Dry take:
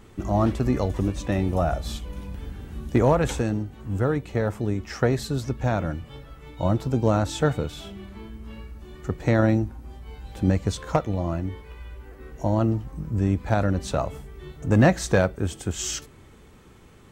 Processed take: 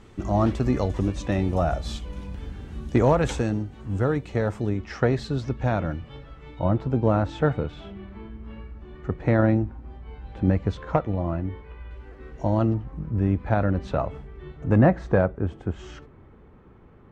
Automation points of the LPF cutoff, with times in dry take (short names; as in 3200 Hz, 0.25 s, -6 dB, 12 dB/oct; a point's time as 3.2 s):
7300 Hz
from 4.69 s 4100 Hz
from 6.59 s 2300 Hz
from 11.91 s 4200 Hz
from 12.74 s 2400 Hz
from 14.78 s 1400 Hz